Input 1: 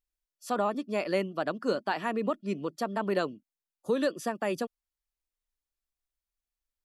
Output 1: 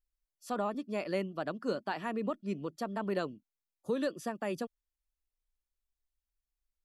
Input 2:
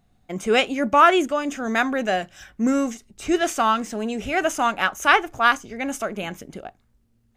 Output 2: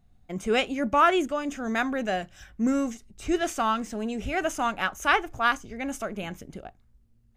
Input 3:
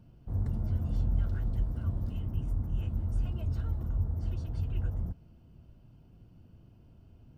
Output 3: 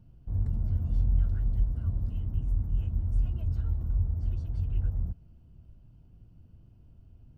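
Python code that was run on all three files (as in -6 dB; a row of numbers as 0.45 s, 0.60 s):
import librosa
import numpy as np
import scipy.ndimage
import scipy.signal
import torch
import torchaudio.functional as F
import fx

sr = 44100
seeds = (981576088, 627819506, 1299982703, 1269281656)

y = fx.low_shelf(x, sr, hz=120.0, db=12.0)
y = y * librosa.db_to_amplitude(-6.0)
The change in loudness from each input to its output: -5.0 LU, -5.5 LU, +2.5 LU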